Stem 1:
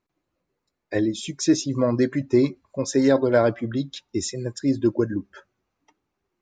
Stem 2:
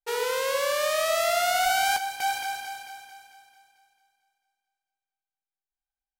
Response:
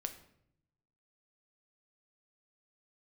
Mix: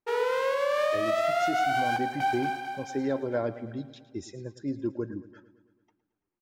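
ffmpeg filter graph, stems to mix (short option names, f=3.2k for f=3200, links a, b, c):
-filter_complex "[0:a]volume=-10.5dB,asplit=2[a][b];[b]volume=-16.5dB[c];[1:a]highpass=f=170:p=1,highshelf=f=3.1k:g=-10,volume=-0.5dB,asplit=2[d][e];[e]volume=-5.5dB[f];[2:a]atrim=start_sample=2205[g];[f][g]afir=irnorm=-1:irlink=0[h];[c]aecho=0:1:111|222|333|444|555|666|777|888|999|1110:1|0.6|0.36|0.216|0.13|0.0778|0.0467|0.028|0.0168|0.0101[i];[a][d][h][i]amix=inputs=4:normalize=0,equalizer=f=13k:t=o:w=2.1:g=-11,alimiter=limit=-18.5dB:level=0:latency=1:release=114"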